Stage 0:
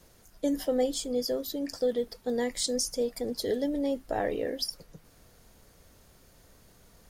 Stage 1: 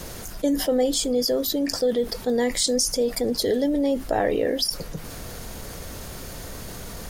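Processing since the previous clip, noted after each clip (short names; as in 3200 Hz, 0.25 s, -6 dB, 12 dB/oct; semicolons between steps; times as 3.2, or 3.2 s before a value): fast leveller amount 50%; gain +4.5 dB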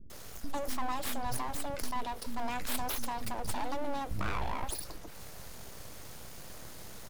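full-wave rectifier; bands offset in time lows, highs 0.1 s, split 270 Hz; gain -8.5 dB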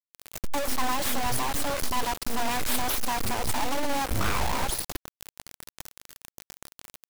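bit-crush 6-bit; gain +6.5 dB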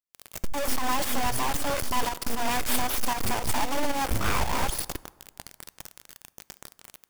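notch 4000 Hz, Q 18; pump 115 bpm, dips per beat 2, -8 dB, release 0.178 s; plate-style reverb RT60 1.6 s, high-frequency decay 0.5×, DRR 19 dB; gain +1.5 dB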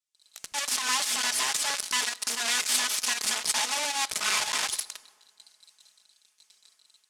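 minimum comb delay 4.7 ms; weighting filter ITU-R 468; gain -3 dB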